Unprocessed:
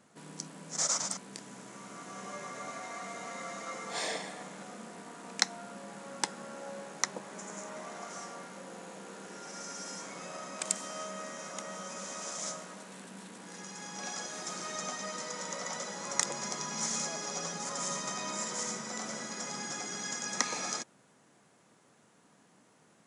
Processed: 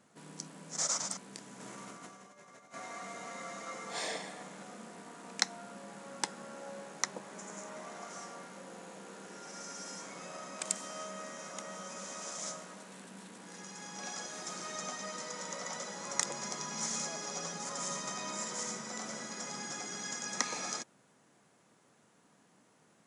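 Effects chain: 1.6–2.74 negative-ratio compressor -48 dBFS, ratio -0.5; gain -2.5 dB

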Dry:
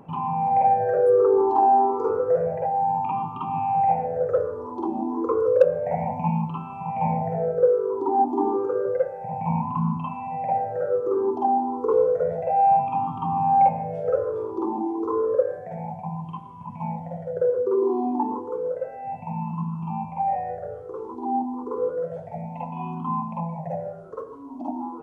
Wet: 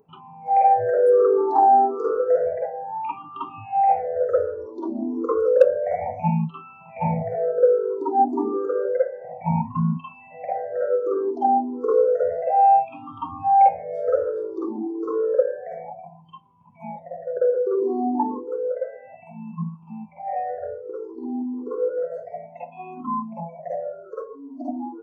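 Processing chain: spectral noise reduction 21 dB; dynamic EQ 360 Hz, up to -5 dB, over -39 dBFS, Q 2.9; gain +3 dB

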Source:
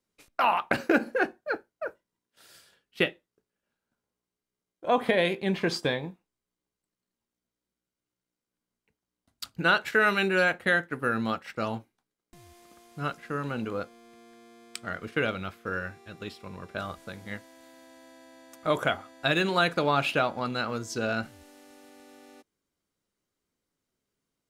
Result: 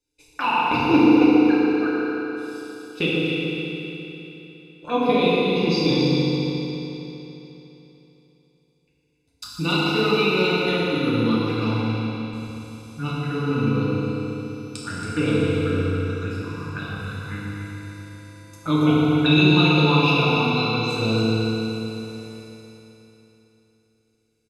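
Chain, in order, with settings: LPF 9500 Hz 12 dB/oct; comb 0.8 ms, depth 73%; envelope phaser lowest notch 200 Hz, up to 1600 Hz, full sweep at -27.5 dBFS; on a send: echo with dull and thin repeats by turns 0.138 s, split 1300 Hz, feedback 59%, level -4 dB; on the sum: FDN reverb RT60 3.4 s, high-frequency decay 0.95×, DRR -7 dB

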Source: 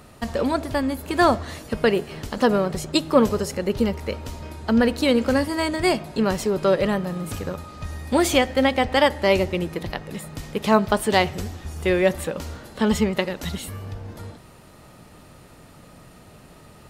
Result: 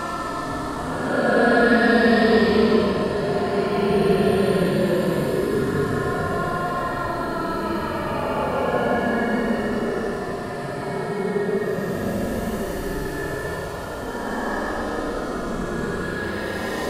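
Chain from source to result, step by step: bin magnitudes rounded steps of 30 dB; on a send: echo with dull and thin repeats by turns 0.27 s, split 1600 Hz, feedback 72%, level -7 dB; on the sum: plate-style reverb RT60 4.4 s, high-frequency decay 0.85×, DRR 6 dB; Paulstretch 27×, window 0.05 s, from 1.79

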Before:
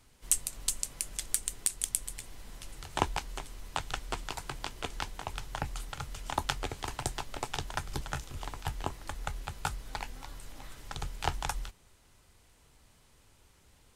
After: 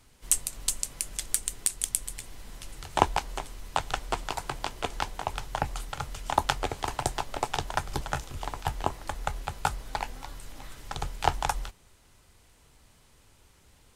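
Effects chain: dynamic EQ 720 Hz, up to +6 dB, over -49 dBFS, Q 0.87; gain +3 dB

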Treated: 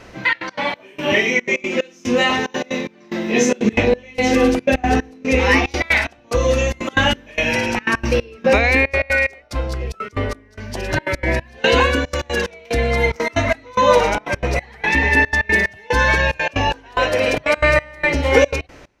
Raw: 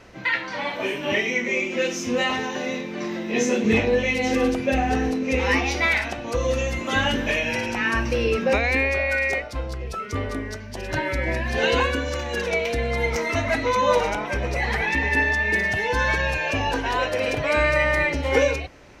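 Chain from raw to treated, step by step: step gate "xxxx.x.xx...x" 183 bpm -24 dB; gain +6.5 dB

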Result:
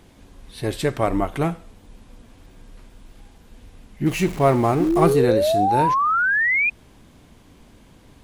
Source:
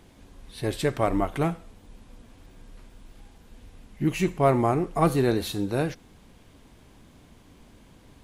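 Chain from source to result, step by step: 4.06–5.13 zero-crossing step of -34 dBFS; 4.8–6.7 painted sound rise 290–2500 Hz -22 dBFS; gain +3 dB

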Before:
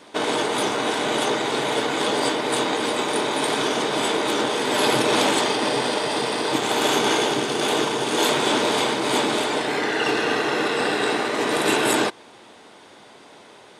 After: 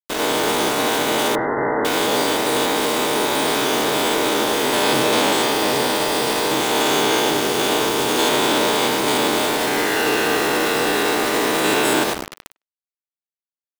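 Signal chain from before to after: stepped spectrum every 0.1 s; HPF 48 Hz 6 dB/oct; on a send: darkening echo 0.237 s, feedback 71%, low-pass 1000 Hz, level -14 dB; on the sum: bit-crush 5-bit; in parallel at -1 dB: limiter -16.5 dBFS, peak gain reduction 9.5 dB; 1.35–1.85 on the sum: brick-wall FIR low-pass 2100 Hz; speakerphone echo 0.1 s, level -28 dB

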